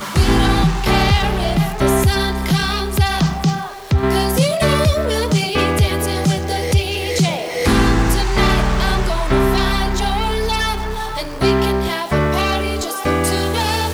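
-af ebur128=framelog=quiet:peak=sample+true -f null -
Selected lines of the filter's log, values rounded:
Integrated loudness:
  I:         -17.2 LUFS
  Threshold: -27.2 LUFS
Loudness range:
  LRA:         1.9 LU
  Threshold: -37.3 LUFS
  LRA low:   -18.5 LUFS
  LRA high:  -16.6 LUFS
Sample peak:
  Peak:       -4.5 dBFS
True peak:
  Peak:       -4.4 dBFS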